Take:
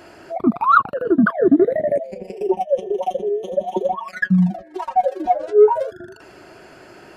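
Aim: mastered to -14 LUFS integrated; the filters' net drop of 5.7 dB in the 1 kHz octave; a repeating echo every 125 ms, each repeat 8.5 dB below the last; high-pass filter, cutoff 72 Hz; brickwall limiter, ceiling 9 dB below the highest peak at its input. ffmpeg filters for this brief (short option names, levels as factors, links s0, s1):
-af "highpass=72,equalizer=f=1000:t=o:g=-8.5,alimiter=limit=0.2:level=0:latency=1,aecho=1:1:125|250|375|500:0.376|0.143|0.0543|0.0206,volume=3.16"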